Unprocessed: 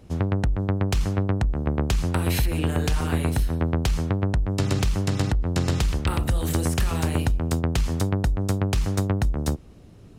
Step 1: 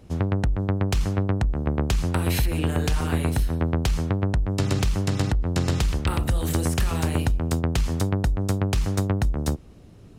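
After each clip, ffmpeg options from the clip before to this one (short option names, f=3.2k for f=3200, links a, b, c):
-af anull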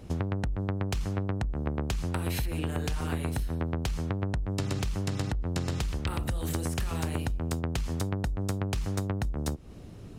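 -af "acompressor=threshold=-31dB:ratio=5,volume=2.5dB"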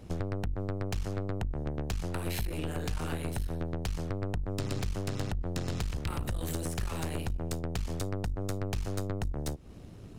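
-af "aeval=exprs='(tanh(28.2*val(0)+0.75)-tanh(0.75))/28.2':c=same,volume=2dB"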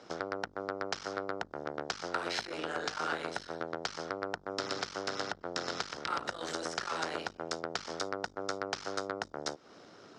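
-af "highpass=490,equalizer=f=1.4k:t=q:w=4:g=8,equalizer=f=2.6k:t=q:w=4:g=-6,equalizer=f=5.3k:t=q:w=4:g=6,lowpass=f=6.1k:w=0.5412,lowpass=f=6.1k:w=1.3066,volume=4.5dB"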